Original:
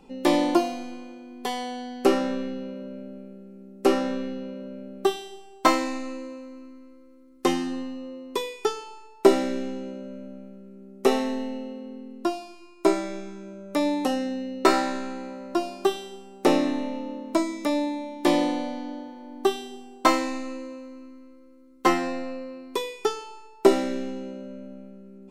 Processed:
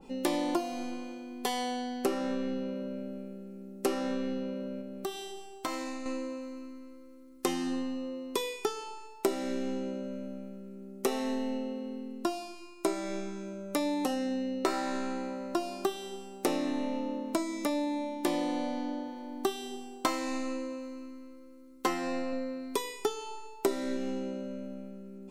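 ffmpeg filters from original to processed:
-filter_complex "[0:a]asettb=1/sr,asplit=3[a][b][c];[a]atrim=end=4.814[d];[b]atrim=start=4.81:end=6.06,asetpts=PTS-STARTPTS,afade=t=in:d=0.004:c=qsin,afade=t=out:st=1.246:d=0.004:c=qsin,acompressor=threshold=-38dB:ratio=2.5:attack=3.2:release=140:knee=1:detection=peak[e];[c]atrim=start=6.056[f];[d][e]acrossfade=d=0.004:c1=hsin:c2=qsin[g];[g][f]acrossfade=d=0.004:c1=qsin:c2=hsin,asettb=1/sr,asplit=3[h][i][j];[h]atrim=end=22.324[k];[i]atrim=start=22.32:end=23.97,asetpts=PTS-STARTPTS,afade=t=in:d=0.004:c=qsin,afade=t=out:st=1.646:d=0.004:c=qsin,aecho=1:1:7.1:0.51,atrim=end_sample=72765[l];[j]atrim=start=23.966[m];[k][l]acrossfade=d=0.004:c1=hsin:c2=qsin[n];[n][m]acrossfade=d=0.004:c1=qsin:c2=hsin,highshelf=f=4.7k:g=7,acompressor=threshold=-28dB:ratio=4,adynamicequalizer=threshold=0.00447:dfrequency=2100:dqfactor=0.7:tfrequency=2100:tqfactor=0.7:attack=5:release=100:ratio=0.375:range=2:mode=cutabove:tftype=highshelf"

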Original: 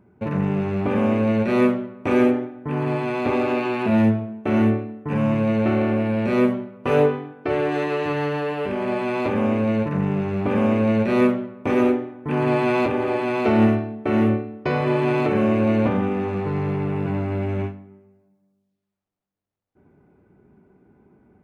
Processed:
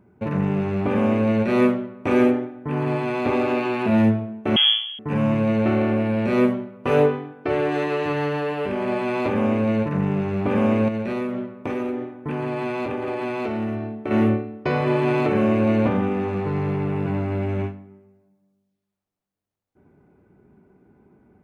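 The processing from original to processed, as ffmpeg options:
-filter_complex "[0:a]asettb=1/sr,asplit=3[a][b][c];[a]atrim=end=4.564[d];[b]atrim=start=4.56:end=4.99,asetpts=PTS-STARTPTS,afade=t=in:d=0.004:c=qsin,afade=t=out:st=0.426:d=0.004:c=qsin,lowpass=f=3k:t=q:w=0.5098,lowpass=f=3k:t=q:w=0.6013,lowpass=f=3k:t=q:w=0.9,lowpass=f=3k:t=q:w=2.563,afreqshift=-3500[e];[c]atrim=start=4.986[f];[d][e]acrossfade=d=0.004:c1=hsin:c2=qsin[g];[g][f]acrossfade=d=0.004:c1=qsin:c2=hsin,asettb=1/sr,asplit=3[h][i][j];[h]atrim=end=10.884[k];[i]atrim=start=10.88:end=14.11,asetpts=PTS-STARTPTS,afade=t=in:d=0.004:c=qsin,afade=t=out:st=3.226:d=0.004:c=qsin,acompressor=threshold=-22dB:ratio=12:attack=3.2:release=140:knee=1:detection=peak[l];[j]atrim=start=14.106[m];[k][l]acrossfade=d=0.004:c1=hsin:c2=qsin[n];[n][m]acrossfade=d=0.004:c1=qsin:c2=hsin"

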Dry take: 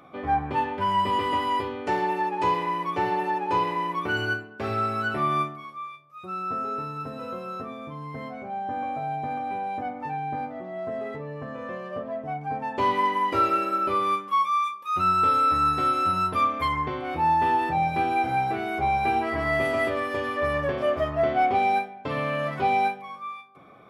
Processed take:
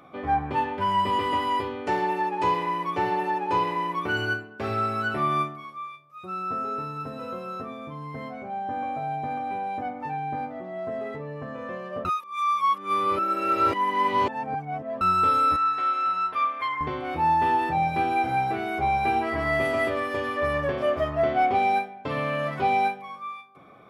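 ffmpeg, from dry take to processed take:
-filter_complex "[0:a]asettb=1/sr,asplit=3[a][b][c];[a]atrim=end=15.564[d];[b]atrim=start=15.56:end=16.81,asetpts=PTS-STARTPTS,afade=t=in:d=0.004:c=qsin,afade=t=out:st=1.246:d=0.004:c=qsin,bandpass=f=1.8k:t=q:w=0.83[e];[c]atrim=start=16.806[f];[d][e]acrossfade=d=0.004:c1=hsin:c2=qsin[g];[g][f]acrossfade=d=0.004:c1=qsin:c2=hsin,asplit=3[h][i][j];[h]atrim=end=12.052[k];[i]atrim=start=12.048:end=15.012,asetpts=PTS-STARTPTS,areverse[l];[j]atrim=start=15.008[m];[k][l]acrossfade=d=0.004:c1=hsin:c2=hsin[n];[n][m]acrossfade=d=0.004:c1=hsin:c2=hsin"

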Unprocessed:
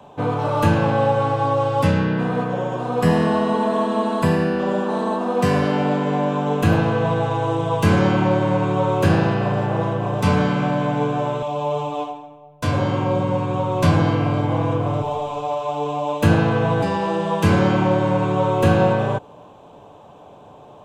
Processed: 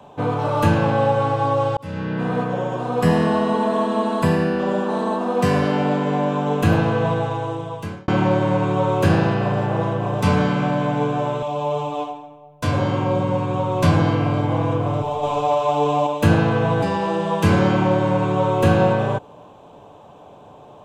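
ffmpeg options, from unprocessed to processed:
-filter_complex "[0:a]asettb=1/sr,asplit=3[a][b][c];[a]atrim=end=15.234[d];[b]atrim=start=15.23:end=16.07,asetpts=PTS-STARTPTS,afade=t=in:d=0.004:c=qsin,afade=t=out:st=0.836:d=0.004:c=qsin,acontrast=33[e];[c]atrim=start=16.066[f];[d][e]acrossfade=d=0.004:c1=hsin:c2=qsin[g];[g][f]acrossfade=d=0.004:c1=qsin:c2=hsin,asplit=3[h][i][j];[h]atrim=end=1.77,asetpts=PTS-STARTPTS,afade=t=out:st=1.766:d=0.004:c=hsin[k];[i]atrim=start=1.77:end=8.08,asetpts=PTS-STARTPTS,afade=t=in:d=0.55,afade=t=out:st=5.3:d=1.01[l];[j]atrim=start=8.08,asetpts=PTS-STARTPTS,afade=t=in:d=0.004:c=hsin[m];[k][l][m]concat=n=3:v=0:a=1"

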